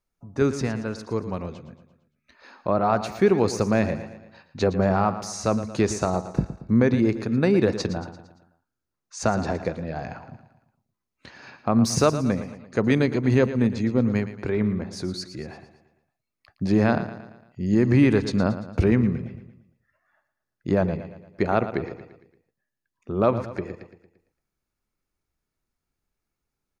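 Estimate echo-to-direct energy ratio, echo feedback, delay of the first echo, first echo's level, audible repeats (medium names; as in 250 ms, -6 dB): -11.5 dB, 49%, 114 ms, -12.5 dB, 4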